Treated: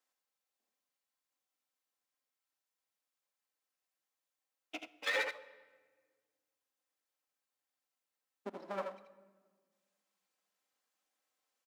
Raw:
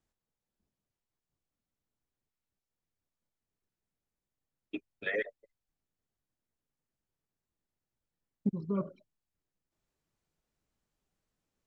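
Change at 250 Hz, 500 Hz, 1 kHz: −17.0, −3.5, +6.5 decibels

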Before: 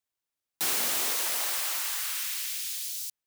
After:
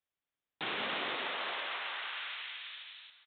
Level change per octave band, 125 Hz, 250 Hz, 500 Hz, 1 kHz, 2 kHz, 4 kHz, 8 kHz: can't be measured, 0.0 dB, 0.0 dB, 0.0 dB, −0.5 dB, −5.0 dB, below −40 dB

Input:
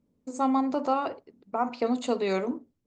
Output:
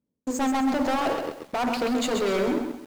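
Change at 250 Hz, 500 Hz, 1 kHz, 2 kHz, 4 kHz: +3.5, +3.0, +1.5, +8.5, +9.5 decibels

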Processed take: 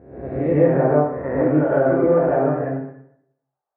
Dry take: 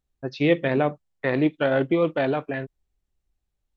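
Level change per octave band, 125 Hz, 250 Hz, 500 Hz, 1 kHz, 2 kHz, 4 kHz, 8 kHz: +7.0 dB, +4.5 dB, +6.5 dB, +6.0 dB, −3.0 dB, below −20 dB, can't be measured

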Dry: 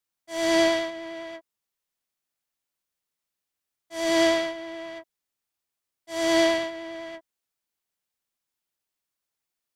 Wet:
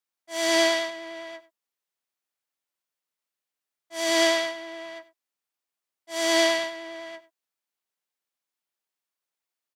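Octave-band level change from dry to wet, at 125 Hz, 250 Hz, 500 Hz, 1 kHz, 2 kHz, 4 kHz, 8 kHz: can't be measured, −4.5 dB, −1.0 dB, 0.0 dB, +2.5 dB, +4.0 dB, +5.0 dB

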